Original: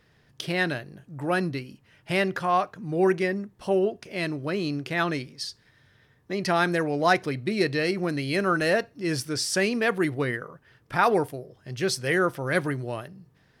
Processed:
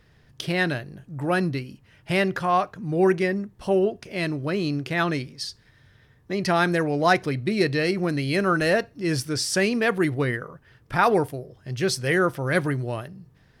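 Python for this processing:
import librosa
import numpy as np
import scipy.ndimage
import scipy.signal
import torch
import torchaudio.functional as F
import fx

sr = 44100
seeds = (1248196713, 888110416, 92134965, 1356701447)

y = fx.low_shelf(x, sr, hz=88.0, db=11.5)
y = F.gain(torch.from_numpy(y), 1.5).numpy()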